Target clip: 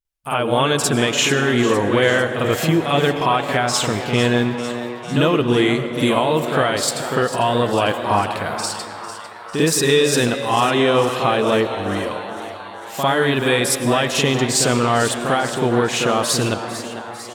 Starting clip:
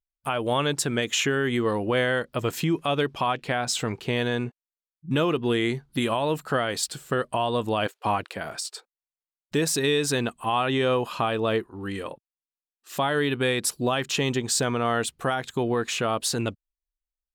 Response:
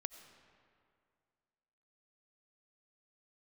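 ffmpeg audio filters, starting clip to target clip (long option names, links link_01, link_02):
-filter_complex "[0:a]asplit=8[link_01][link_02][link_03][link_04][link_05][link_06][link_07][link_08];[link_02]adelay=449,afreqshift=120,volume=-13dB[link_09];[link_03]adelay=898,afreqshift=240,volume=-16.9dB[link_10];[link_04]adelay=1347,afreqshift=360,volume=-20.8dB[link_11];[link_05]adelay=1796,afreqshift=480,volume=-24.6dB[link_12];[link_06]adelay=2245,afreqshift=600,volume=-28.5dB[link_13];[link_07]adelay=2694,afreqshift=720,volume=-32.4dB[link_14];[link_08]adelay=3143,afreqshift=840,volume=-36.3dB[link_15];[link_01][link_09][link_10][link_11][link_12][link_13][link_14][link_15]amix=inputs=8:normalize=0,asplit=2[link_16][link_17];[1:a]atrim=start_sample=2205,asetrate=38367,aresample=44100,adelay=50[link_18];[link_17][link_18]afir=irnorm=-1:irlink=0,volume=8.5dB[link_19];[link_16][link_19]amix=inputs=2:normalize=0"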